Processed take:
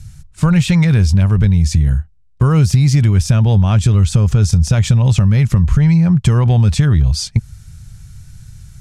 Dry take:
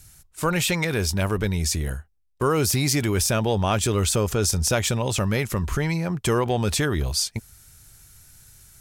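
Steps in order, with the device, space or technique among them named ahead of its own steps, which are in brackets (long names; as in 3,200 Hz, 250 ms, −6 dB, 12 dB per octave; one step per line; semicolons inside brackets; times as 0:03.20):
jukebox (low-pass filter 7,400 Hz 12 dB per octave; low shelf with overshoot 230 Hz +13.5 dB, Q 1.5; downward compressor, threshold −12 dBFS, peak gain reduction 7.5 dB)
level +4 dB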